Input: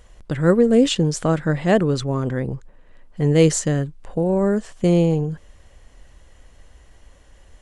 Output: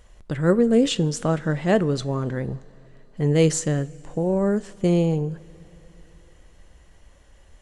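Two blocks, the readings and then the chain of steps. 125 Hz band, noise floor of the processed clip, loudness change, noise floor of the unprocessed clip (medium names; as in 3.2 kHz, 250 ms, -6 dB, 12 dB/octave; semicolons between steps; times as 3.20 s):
-3.0 dB, -53 dBFS, -3.0 dB, -51 dBFS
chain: two-slope reverb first 0.3 s, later 3.7 s, from -18 dB, DRR 14.5 dB; trim -3 dB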